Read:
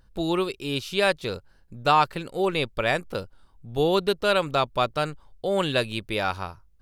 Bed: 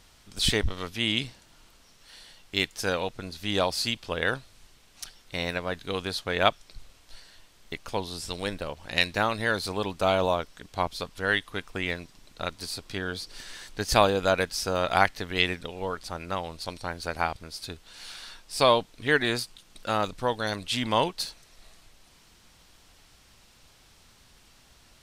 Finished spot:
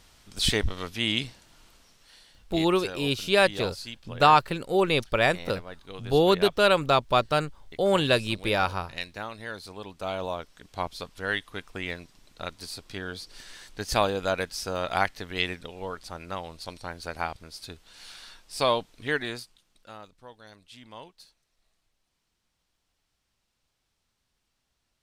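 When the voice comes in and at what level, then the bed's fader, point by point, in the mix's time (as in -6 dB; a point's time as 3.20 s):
2.35 s, +1.5 dB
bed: 1.76 s 0 dB
2.67 s -11 dB
9.76 s -11 dB
10.77 s -3.5 dB
19.06 s -3.5 dB
20.10 s -20.5 dB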